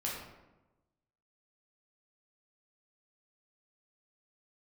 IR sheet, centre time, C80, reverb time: 59 ms, 4.5 dB, 1.1 s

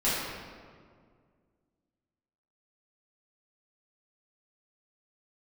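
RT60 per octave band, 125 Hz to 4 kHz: 2.5 s, 2.4 s, 2.1 s, 1.8 s, 1.4 s, 1.1 s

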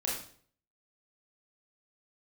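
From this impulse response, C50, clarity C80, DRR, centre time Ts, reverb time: 3.0 dB, 7.5 dB, -5.0 dB, 44 ms, 0.50 s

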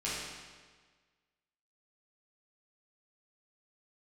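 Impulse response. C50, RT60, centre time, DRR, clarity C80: -1.5 dB, 1.5 s, 98 ms, -9.5 dB, 1.0 dB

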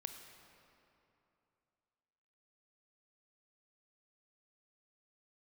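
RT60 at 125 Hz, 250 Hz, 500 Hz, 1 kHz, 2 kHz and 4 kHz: 3.0 s, 2.9 s, 2.8 s, 2.9 s, 2.4 s, 1.9 s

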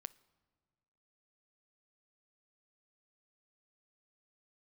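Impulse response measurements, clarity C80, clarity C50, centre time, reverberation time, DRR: 24.0 dB, 21.5 dB, 2 ms, 1.6 s, 19.0 dB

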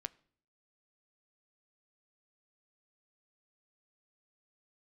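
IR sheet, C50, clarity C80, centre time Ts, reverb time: 24.0 dB, 26.5 dB, 2 ms, 0.55 s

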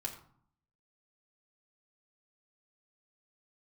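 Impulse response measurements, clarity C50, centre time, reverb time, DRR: 9.5 dB, 15 ms, 0.60 s, 0.0 dB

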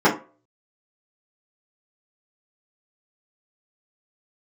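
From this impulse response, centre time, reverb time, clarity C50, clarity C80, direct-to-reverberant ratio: 20 ms, 0.35 s, 11.0 dB, 17.0 dB, -9.5 dB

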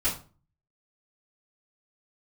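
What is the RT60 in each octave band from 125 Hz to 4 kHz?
0.65 s, 0.50 s, 0.40 s, 0.35 s, 0.30 s, 0.25 s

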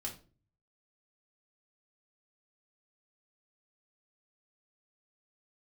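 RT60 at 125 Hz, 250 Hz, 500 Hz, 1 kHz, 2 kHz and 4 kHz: 0.85 s, 0.55 s, 0.45 s, 0.30 s, 0.30 s, 0.30 s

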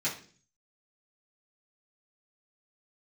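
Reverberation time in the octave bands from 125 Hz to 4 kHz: 0.75 s, 0.60 s, 0.50 s, 0.35 s, 0.40 s, 0.50 s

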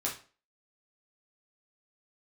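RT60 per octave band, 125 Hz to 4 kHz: 0.35 s, 0.40 s, 0.40 s, 0.35 s, 0.35 s, 0.35 s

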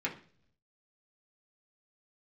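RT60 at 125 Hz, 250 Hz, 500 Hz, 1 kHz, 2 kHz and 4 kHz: 1.0 s, 0.75 s, 0.55 s, 0.40 s, 0.45 s, 0.50 s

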